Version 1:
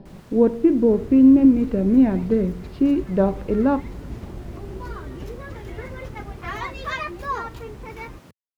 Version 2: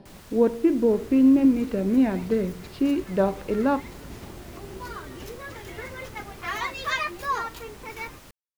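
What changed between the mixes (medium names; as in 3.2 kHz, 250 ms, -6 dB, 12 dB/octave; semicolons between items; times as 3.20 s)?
first sound: remove high-pass 110 Hz 24 dB/octave; master: add tilt EQ +2.5 dB/octave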